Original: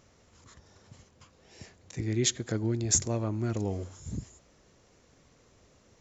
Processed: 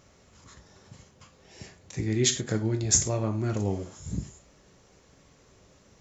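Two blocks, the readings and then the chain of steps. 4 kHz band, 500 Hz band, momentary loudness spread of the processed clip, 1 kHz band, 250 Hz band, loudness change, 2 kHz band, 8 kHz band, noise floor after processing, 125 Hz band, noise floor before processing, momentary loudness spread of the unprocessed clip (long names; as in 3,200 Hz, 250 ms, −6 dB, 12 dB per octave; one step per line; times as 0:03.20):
+3.5 dB, +3.0 dB, 14 LU, +3.5 dB, +2.5 dB, +3.0 dB, +4.0 dB, can't be measured, −60 dBFS, +3.0 dB, −63 dBFS, 14 LU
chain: reverb whose tail is shaped and stops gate 130 ms falling, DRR 5 dB
level +2.5 dB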